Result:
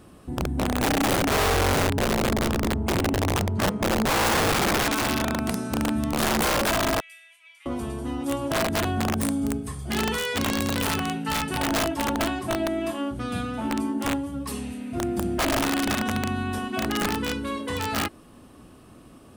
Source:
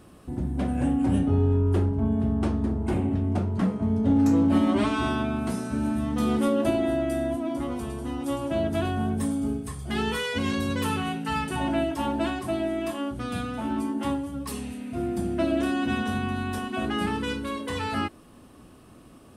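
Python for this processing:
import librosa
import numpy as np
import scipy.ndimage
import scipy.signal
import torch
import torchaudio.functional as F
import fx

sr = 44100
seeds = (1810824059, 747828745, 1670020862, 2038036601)

y = fx.ladder_highpass(x, sr, hz=2200.0, resonance_pct=75, at=(7.0, 7.66))
y = (np.mod(10.0 ** (19.0 / 20.0) * y + 1.0, 2.0) - 1.0) / 10.0 ** (19.0 / 20.0)
y = y * librosa.db_to_amplitude(1.5)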